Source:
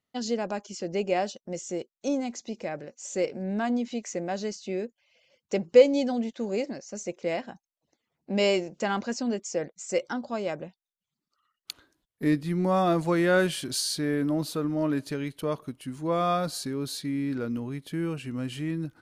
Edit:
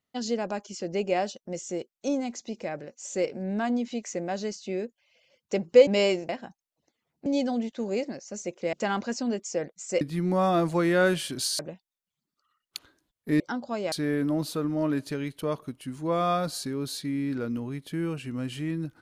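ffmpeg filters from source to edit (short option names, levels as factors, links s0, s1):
-filter_complex "[0:a]asplit=9[s0][s1][s2][s3][s4][s5][s6][s7][s8];[s0]atrim=end=5.872[s9];[s1]atrim=start=8.308:end=8.732[s10];[s2]atrim=start=7.338:end=8.312[s11];[s3]atrim=start=5.868:end=7.342[s12];[s4]atrim=start=8.728:end=10.012[s13];[s5]atrim=start=12.338:end=13.922[s14];[s6]atrim=start=10.528:end=12.342[s15];[s7]atrim=start=10.008:end=10.532[s16];[s8]atrim=start=13.918[s17];[s9][s10]acrossfade=d=0.004:c1=hsin:c2=hsin[s18];[s18][s11]acrossfade=d=0.004:c1=hsin:c2=hsin[s19];[s19][s12]acrossfade=d=0.004:c1=hsin:c2=hsin[s20];[s20][s13]acrossfade=d=0.004:c1=hsin:c2=hsin[s21];[s21][s14]acrossfade=d=0.004:c1=hsin:c2=hsin[s22];[s22][s15]acrossfade=d=0.004:c1=hsin:c2=hsin[s23];[s23][s16]acrossfade=d=0.004:c1=hsin:c2=hsin[s24];[s24][s17]acrossfade=d=0.004:c1=hsin:c2=hsin"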